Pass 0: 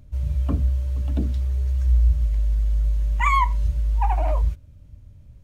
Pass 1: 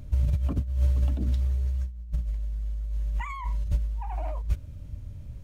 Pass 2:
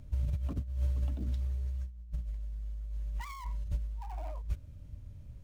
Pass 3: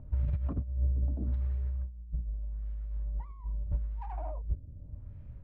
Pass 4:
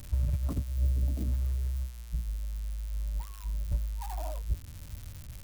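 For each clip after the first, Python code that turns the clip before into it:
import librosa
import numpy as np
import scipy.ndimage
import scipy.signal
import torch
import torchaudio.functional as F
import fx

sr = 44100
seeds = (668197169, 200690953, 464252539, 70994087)

y1 = fx.over_compress(x, sr, threshold_db=-25.0, ratio=-0.5)
y2 = fx.dead_time(y1, sr, dead_ms=0.12)
y2 = y2 * librosa.db_to_amplitude(-8.0)
y3 = fx.filter_lfo_lowpass(y2, sr, shape='sine', hz=0.81, low_hz=390.0, high_hz=1900.0, q=1.1)
y3 = y3 * librosa.db_to_amplitude(2.0)
y4 = y3 + 0.5 * 10.0 ** (-31.5 / 20.0) * np.diff(np.sign(y3), prepend=np.sign(y3[:1]))
y4 = y4 * librosa.db_to_amplitude(1.5)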